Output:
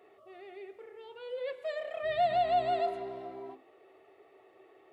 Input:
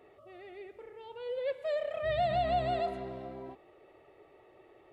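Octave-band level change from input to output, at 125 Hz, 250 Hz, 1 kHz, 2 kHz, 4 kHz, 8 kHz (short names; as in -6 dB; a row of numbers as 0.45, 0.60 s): -10.5 dB, -3.5 dB, +2.5 dB, +0.5 dB, 0.0 dB, n/a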